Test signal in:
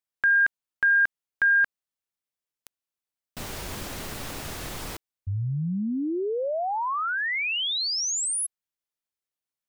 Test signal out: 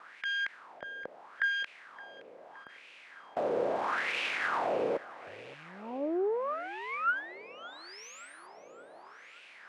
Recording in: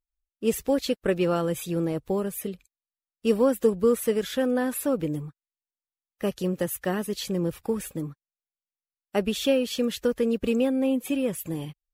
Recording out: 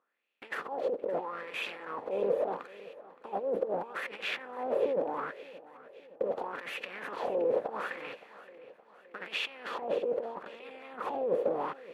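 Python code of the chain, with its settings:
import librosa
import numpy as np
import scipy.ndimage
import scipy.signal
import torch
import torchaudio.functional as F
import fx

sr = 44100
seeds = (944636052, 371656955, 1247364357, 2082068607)

y = fx.bin_compress(x, sr, power=0.4)
y = scipy.signal.sosfilt(scipy.signal.butter(2, 200.0, 'highpass', fs=sr, output='sos'), y)
y = fx.gate_hold(y, sr, open_db=-33.0, close_db=-38.0, hold_ms=251.0, range_db=-26, attack_ms=1.4, release_ms=28.0)
y = fx.tilt_eq(y, sr, slope=-3.0)
y = fx.over_compress(y, sr, threshold_db=-21.0, ratio=-0.5)
y = fx.tube_stage(y, sr, drive_db=23.0, bias=0.65)
y = fx.wah_lfo(y, sr, hz=0.77, low_hz=490.0, high_hz=2600.0, q=4.5)
y = fx.echo_feedback(y, sr, ms=569, feedback_pct=57, wet_db=-19.0)
y = y * librosa.db_to_amplitude(6.0)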